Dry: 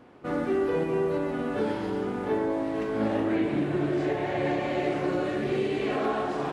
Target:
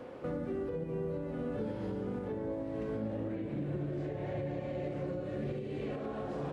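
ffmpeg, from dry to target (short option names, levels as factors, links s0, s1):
-filter_complex "[0:a]equalizer=f=520:w=5.6:g=14.5,acrossover=split=200[s0][s1];[s1]acompressor=threshold=0.00447:ratio=2.5[s2];[s0][s2]amix=inputs=2:normalize=0,alimiter=level_in=2.37:limit=0.0631:level=0:latency=1:release=449,volume=0.422,volume=1.5"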